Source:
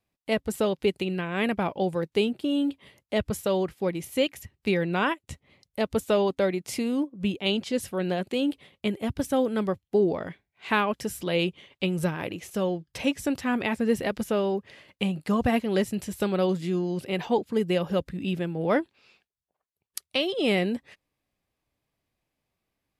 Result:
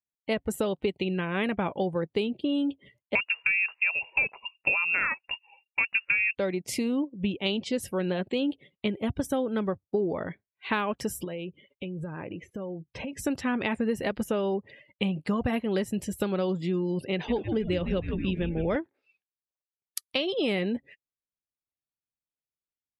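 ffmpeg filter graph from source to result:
-filter_complex "[0:a]asettb=1/sr,asplit=3[a][b][c];[a]atrim=end=3.154[d];[b]atrim=start=3.15:end=6.35,asetpts=PTS-STARTPTS,afade=t=in:d=0.004:c=qsin,afade=t=out:st=3.196:d=0.004:c=qsin,highpass=77,acontrast=76,lowpass=f=2.5k:t=q:w=0.5098,lowpass=f=2.5k:t=q:w=0.6013,lowpass=f=2.5k:t=q:w=0.9,lowpass=f=2.5k:t=q:w=2.563,afreqshift=-2900[e];[c]atrim=start=6.346[f];[d][e]acrossfade=d=0.004:c1=hsin:c2=qsin[g];[g][f]acrossfade=d=0.004:c1=qsin:c2=hsin,asettb=1/sr,asplit=3[h][i][j];[h]atrim=end=11.244[k];[i]atrim=start=11.24:end=13.13,asetpts=PTS-STARTPTS,afade=t=in:d=0.004:c=qsin,afade=t=out:st=1.886:d=0.004:c=qsin,highshelf=f=3.4k:g=-10.5,acompressor=threshold=-33dB:ratio=10:attack=3.2:release=140:knee=1:detection=peak[l];[j]atrim=start=13.126[m];[k][l]acrossfade=d=0.004:c1=hsin:c2=qsin[n];[n][m]acrossfade=d=0.004:c1=qsin:c2=hsin,asettb=1/sr,asplit=3[o][p][q];[o]atrim=end=17.124[r];[p]atrim=start=17.12:end=18.76,asetpts=PTS-STARTPTS,afade=t=in:d=0.004:c=qsin,afade=t=out:st=1.636:d=0.004:c=qsin,lowpass=10k,equalizer=f=990:t=o:w=0.85:g=-6,asplit=9[s][t][u][v][w][x][y][z][aa];[t]adelay=159,afreqshift=-130,volume=-9dB[ab];[u]adelay=318,afreqshift=-260,volume=-12.9dB[ac];[v]adelay=477,afreqshift=-390,volume=-16.8dB[ad];[w]adelay=636,afreqshift=-520,volume=-20.6dB[ae];[x]adelay=795,afreqshift=-650,volume=-24.5dB[af];[y]adelay=954,afreqshift=-780,volume=-28.4dB[ag];[z]adelay=1113,afreqshift=-910,volume=-32.3dB[ah];[aa]adelay=1272,afreqshift=-1040,volume=-36.1dB[ai];[s][ab][ac][ad][ae][af][ag][ah][ai]amix=inputs=9:normalize=0,atrim=end_sample=72324[aj];[q]atrim=start=18.756[ak];[r][aj]acrossfade=d=0.004:c1=hsin:c2=qsin[al];[al][ak]acrossfade=d=0.004:c1=qsin:c2=hsin,bandreject=f=710:w=17,afftdn=nr=26:nf=-48,acompressor=threshold=-25dB:ratio=6,volume=1.5dB"

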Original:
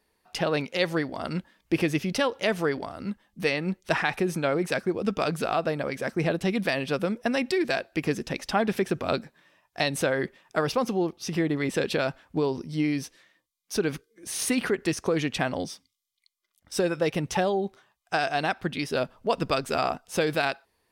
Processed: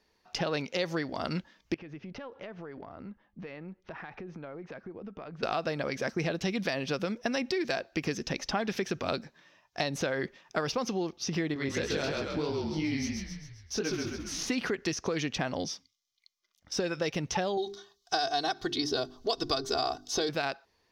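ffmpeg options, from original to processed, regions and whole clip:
-filter_complex "[0:a]asettb=1/sr,asplit=3[a][b][c];[a]atrim=end=1.744[d];[b]atrim=start=1.74:end=5.43,asetpts=PTS-STARTPTS,afade=t=in:d=0.004:c=qsin,afade=t=out:st=3.686:d=0.004:c=qsin,lowpass=1.9k,acompressor=threshold=-39dB:ratio=6:attack=3.2:release=140:knee=1:detection=peak,aeval=exprs='(tanh(10*val(0)+0.4)-tanh(0.4))/10':c=same[e];[c]atrim=start=5.426[f];[d][e]acrossfade=d=0.004:c1=hsin:c2=qsin[g];[g][f]acrossfade=d=0.004:c1=qsin:c2=hsin,asettb=1/sr,asplit=3[h][i][j];[h]atrim=end=11.544[k];[i]atrim=start=11.54:end=14.49,asetpts=PTS-STARTPTS,afade=t=in:d=0.004:c=qsin,afade=t=out:st=2.946:d=0.004:c=qsin,asplit=8[l][m][n][o][p][q][r][s];[m]adelay=133,afreqshift=-37,volume=-3dB[t];[n]adelay=266,afreqshift=-74,volume=-8.8dB[u];[o]adelay=399,afreqshift=-111,volume=-14.7dB[v];[p]adelay=532,afreqshift=-148,volume=-20.5dB[w];[q]adelay=665,afreqshift=-185,volume=-26.4dB[x];[r]adelay=798,afreqshift=-222,volume=-32.2dB[y];[s]adelay=931,afreqshift=-259,volume=-38.1dB[z];[l][t][u][v][w][x][y][z]amix=inputs=8:normalize=0,atrim=end_sample=130095,flanger=delay=16.5:depth=6:speed=3[aa];[j]atrim=start=14.486[ab];[k][aa]acrossfade=d=0.004:c1=hsin:c2=qsin[ac];[ac][ab]acrossfade=d=0.004:c1=qsin:c2=hsin,asettb=1/sr,asplit=3[ad][ae][af];[ad]atrim=end=17.574[ag];[ae]atrim=start=17.57:end=20.29,asetpts=PTS-STARTPTS,afade=t=in:d=0.004:c=qsin,afade=t=out:st=2.716:d=0.004:c=qsin,highshelf=f=3.1k:t=q:w=3:g=6,bandreject=f=50:t=h:w=6,bandreject=f=100:t=h:w=6,bandreject=f=150:t=h:w=6,bandreject=f=200:t=h:w=6,bandreject=f=250:t=h:w=6,bandreject=f=300:t=h:w=6,bandreject=f=350:t=h:w=6,bandreject=f=400:t=h:w=6,aecho=1:1:2.7:0.79,atrim=end_sample=119952[ah];[af]atrim=start=20.286[ai];[ag][ah]acrossfade=d=0.004:c1=hsin:c2=qsin[aj];[aj][ai]acrossfade=d=0.004:c1=qsin:c2=hsin,highshelf=f=7.3k:t=q:w=3:g=-7.5,acrossover=split=1500|6500[ak][al][am];[ak]acompressor=threshold=-29dB:ratio=4[an];[al]acompressor=threshold=-36dB:ratio=4[ao];[am]acompressor=threshold=-45dB:ratio=4[ap];[an][ao][ap]amix=inputs=3:normalize=0"

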